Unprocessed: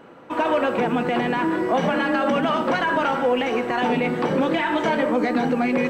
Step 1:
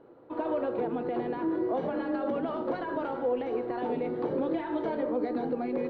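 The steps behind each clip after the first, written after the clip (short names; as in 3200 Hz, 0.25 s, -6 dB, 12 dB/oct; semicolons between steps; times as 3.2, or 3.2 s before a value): EQ curve 120 Hz 0 dB, 190 Hz -10 dB, 350 Hz +3 dB, 2800 Hz -17 dB, 4200 Hz -9 dB, 6500 Hz -28 dB; gain -7 dB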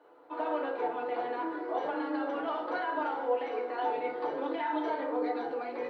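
HPF 790 Hz 12 dB/oct; FDN reverb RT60 0.42 s, low-frequency decay 1.45×, high-frequency decay 0.65×, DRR -2.5 dB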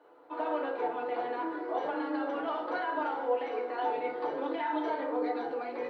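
nothing audible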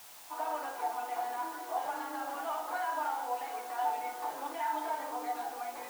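requantised 8-bit, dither triangular; resonant low shelf 600 Hz -6.5 dB, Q 3; gain -4 dB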